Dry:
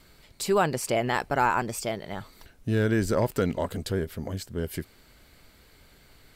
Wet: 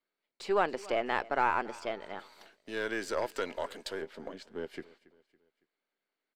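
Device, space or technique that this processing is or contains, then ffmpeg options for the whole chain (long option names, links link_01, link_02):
crystal radio: -filter_complex "[0:a]highpass=210,asettb=1/sr,asplit=3[link_01][link_02][link_03];[link_01]atrim=end=2.194[link_04];[link_02]atrim=start=2.19:end=4.02,asetpts=PTS-STARTPTS,afade=type=in:duration=0.004:curve=qsin,afade=type=out:start_time=1.826:duration=0.004:curve=qsin,aemphasis=mode=production:type=riaa[link_05];[link_03]atrim=start=4.016[link_06];[link_04][link_05]acrossfade=duration=0.004:curve1=hsin:curve2=qsin[link_07];[link_07][link_06]acrossfade=duration=0.004:curve1=qsin:curve2=hsin,agate=range=-24dB:threshold=-51dB:ratio=16:detection=peak,highpass=270,lowpass=3400,aeval=exprs='if(lt(val(0),0),0.708*val(0),val(0))':channel_layout=same,aecho=1:1:279|558|837:0.0891|0.0401|0.018,volume=-3dB"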